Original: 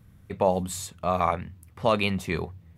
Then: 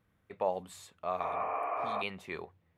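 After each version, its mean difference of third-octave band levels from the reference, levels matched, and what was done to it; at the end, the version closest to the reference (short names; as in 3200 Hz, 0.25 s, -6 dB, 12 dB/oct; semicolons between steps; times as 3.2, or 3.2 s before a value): 6.5 dB: spectral repair 1.25–1.99, 270–3100 Hz before; tone controls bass -15 dB, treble -10 dB; gain -8 dB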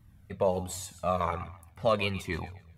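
3.0 dB: on a send: thinning echo 0.13 s, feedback 31%, high-pass 510 Hz, level -14 dB; on the sum: cascading flanger falling 1.3 Hz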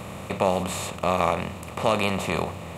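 12.0 dB: per-bin compression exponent 0.4; ending taper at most 140 dB/s; gain -2.5 dB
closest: second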